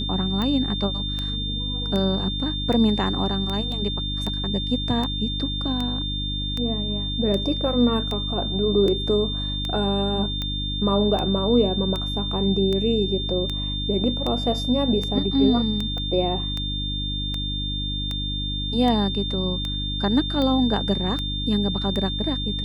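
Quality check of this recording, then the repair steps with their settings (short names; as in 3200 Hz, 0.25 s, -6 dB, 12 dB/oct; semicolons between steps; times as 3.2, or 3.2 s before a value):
hum 50 Hz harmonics 6 -29 dBFS
tick 78 rpm -15 dBFS
tone 3600 Hz -28 dBFS
3.72 gap 2.3 ms
15.98 pop -21 dBFS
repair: de-click; de-hum 50 Hz, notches 6; notch 3600 Hz, Q 30; interpolate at 3.72, 2.3 ms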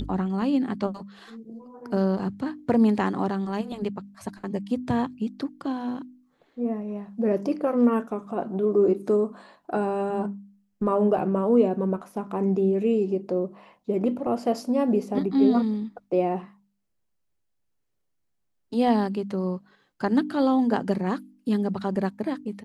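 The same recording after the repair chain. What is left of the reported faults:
15.98 pop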